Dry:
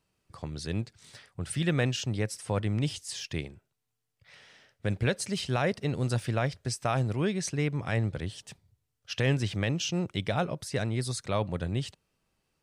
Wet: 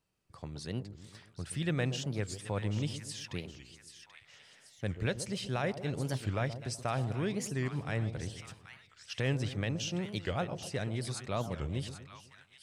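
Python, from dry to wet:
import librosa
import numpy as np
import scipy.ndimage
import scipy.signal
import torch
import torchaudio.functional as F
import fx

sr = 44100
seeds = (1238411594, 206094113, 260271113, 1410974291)

y = fx.echo_split(x, sr, split_hz=1000.0, low_ms=125, high_ms=784, feedback_pct=52, wet_db=-11)
y = fx.record_warp(y, sr, rpm=45.0, depth_cents=250.0)
y = F.gain(torch.from_numpy(y), -5.5).numpy()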